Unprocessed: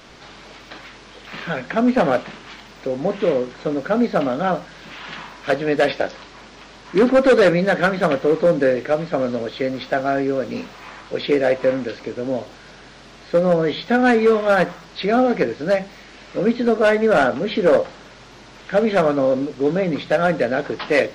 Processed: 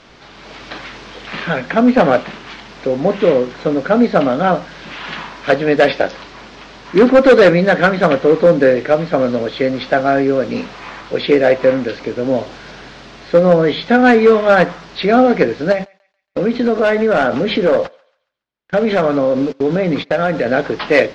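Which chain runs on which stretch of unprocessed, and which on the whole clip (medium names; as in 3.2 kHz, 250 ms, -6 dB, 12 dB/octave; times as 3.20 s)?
15.72–20.46 s: gate -31 dBFS, range -54 dB + compression 3:1, threshold -20 dBFS + thinning echo 139 ms, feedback 39%, high-pass 950 Hz, level -23.5 dB
whole clip: low-pass 5.9 kHz 12 dB/octave; level rider gain up to 8.5 dB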